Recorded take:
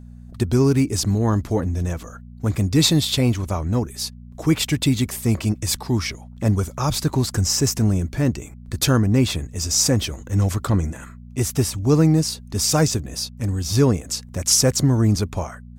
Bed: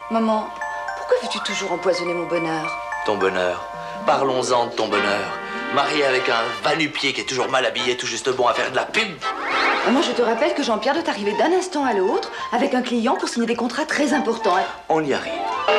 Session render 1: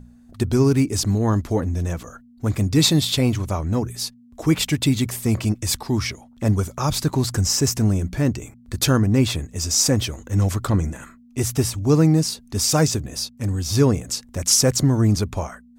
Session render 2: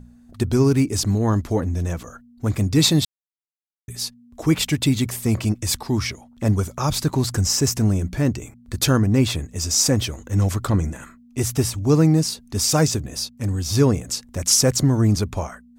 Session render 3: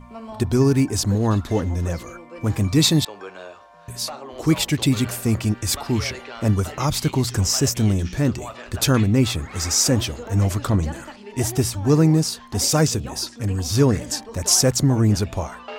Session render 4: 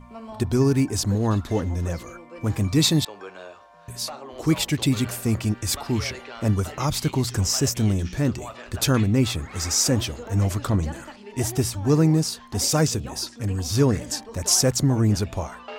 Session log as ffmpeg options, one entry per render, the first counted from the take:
-af "bandreject=f=60:t=h:w=4,bandreject=f=120:t=h:w=4,bandreject=f=180:t=h:w=4"
-filter_complex "[0:a]asplit=3[s0][s1][s2];[s0]atrim=end=3.05,asetpts=PTS-STARTPTS,afade=t=out:st=3.046:d=0.004:c=hsin[s3];[s1]atrim=start=3.05:end=3.88,asetpts=PTS-STARTPTS,volume=0[s4];[s2]atrim=start=3.88,asetpts=PTS-STARTPTS,afade=t=in:d=0.004:c=hsin[s5];[s3][s4][s5]concat=n=3:v=0:a=1"
-filter_complex "[1:a]volume=0.133[s0];[0:a][s0]amix=inputs=2:normalize=0"
-af "volume=0.75"

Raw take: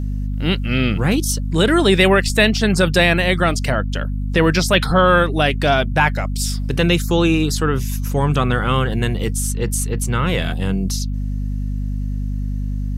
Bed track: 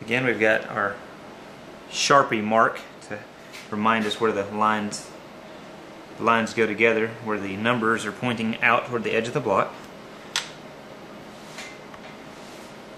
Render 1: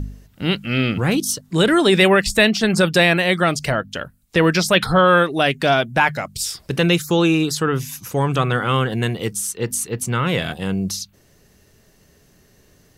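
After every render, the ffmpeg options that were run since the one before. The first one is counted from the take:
-af "bandreject=f=50:t=h:w=4,bandreject=f=100:t=h:w=4,bandreject=f=150:t=h:w=4,bandreject=f=200:t=h:w=4,bandreject=f=250:t=h:w=4"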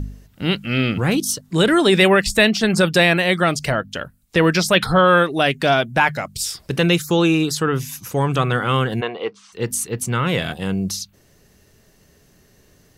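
-filter_complex "[0:a]asplit=3[s0][s1][s2];[s0]afade=t=out:st=9:d=0.02[s3];[s1]highpass=420,equalizer=f=460:t=q:w=4:g=5,equalizer=f=750:t=q:w=4:g=6,equalizer=f=1100:t=q:w=4:g=8,equalizer=f=1800:t=q:w=4:g=-4,equalizer=f=3300:t=q:w=4:g=-3,lowpass=f=3600:w=0.5412,lowpass=f=3600:w=1.3066,afade=t=in:st=9:d=0.02,afade=t=out:st=9.52:d=0.02[s4];[s2]afade=t=in:st=9.52:d=0.02[s5];[s3][s4][s5]amix=inputs=3:normalize=0"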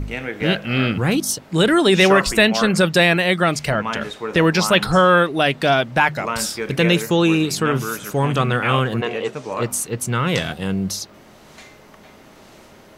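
-filter_complex "[1:a]volume=0.531[s0];[0:a][s0]amix=inputs=2:normalize=0"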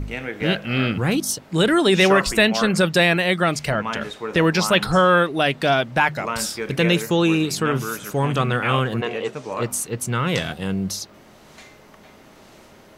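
-af "volume=0.794"

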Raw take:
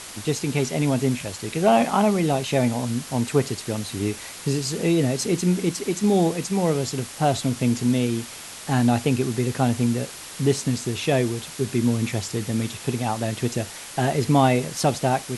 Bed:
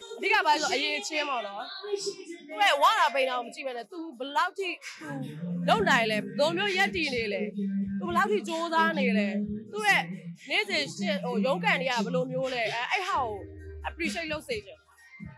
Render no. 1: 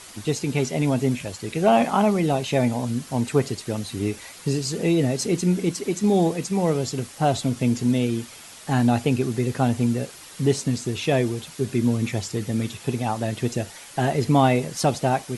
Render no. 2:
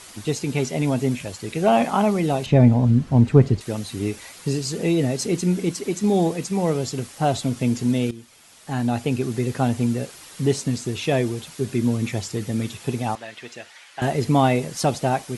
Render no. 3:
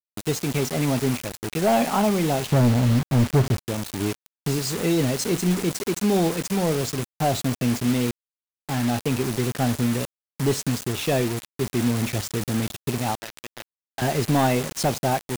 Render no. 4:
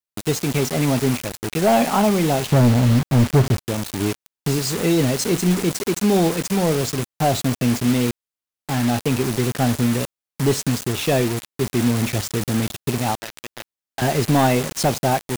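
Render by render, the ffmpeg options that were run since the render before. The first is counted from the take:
-af "afftdn=nr=7:nf=-39"
-filter_complex "[0:a]asettb=1/sr,asplit=3[s0][s1][s2];[s0]atrim=end=2.464[s3];[s1]atrim=start=2.46:end=3.61,asetpts=PTS-STARTPTS,afade=t=in:d=0.004:c=qsin,afade=t=out:st=1.146:d=0.004:c=qsin,aemphasis=mode=reproduction:type=riaa[s4];[s2]atrim=start=3.606[s5];[s3][s4]acrossfade=d=0.004:c1=hsin:c2=qsin[s6];[s6][s5]acrossfade=d=0.004:c1=qsin:c2=hsin,asettb=1/sr,asplit=3[s7][s8][s9];[s7]atrim=end=13.154[s10];[s8]atrim=start=13.15:end=14.02,asetpts=PTS-STARTPTS,afade=t=in:d=0.004:c=qsin,afade=t=out:st=0.866:d=0.004:c=qsin,bandpass=f=2100:t=q:w=0.87[s11];[s9]atrim=start=14.016[s12];[s10][s11]acrossfade=d=0.004:c1=hsin:c2=qsin[s13];[s13][s12]acrossfade=d=0.004:c1=qsin:c2=hsin,asplit=2[s14][s15];[s14]atrim=end=8.11,asetpts=PTS-STARTPTS,afade=t=out:st=8.106:d=0.004:c=hsin:silence=0.188365[s16];[s15]atrim=start=8.11,asetpts=PTS-STARTPTS,afade=t=in:d=1.27:silence=0.188365[s17];[s16][s17]concat=n=2:v=0:a=1"
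-af "asoftclip=type=tanh:threshold=0.237,acrusher=bits=4:mix=0:aa=0.000001"
-af "volume=1.5"

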